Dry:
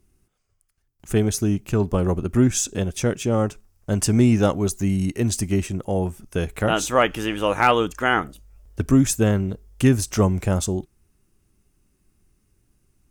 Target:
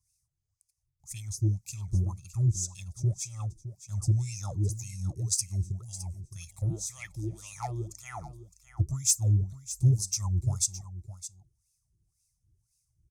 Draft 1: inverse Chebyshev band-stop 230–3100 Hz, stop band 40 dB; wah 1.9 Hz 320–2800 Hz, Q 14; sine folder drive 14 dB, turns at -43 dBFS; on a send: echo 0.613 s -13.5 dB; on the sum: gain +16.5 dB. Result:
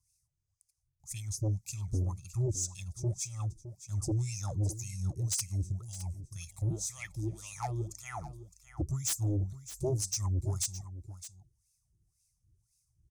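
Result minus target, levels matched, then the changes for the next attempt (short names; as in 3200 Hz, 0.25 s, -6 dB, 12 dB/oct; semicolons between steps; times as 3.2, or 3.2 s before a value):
sine folder: distortion +23 dB
change: sine folder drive 14 dB, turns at -31 dBFS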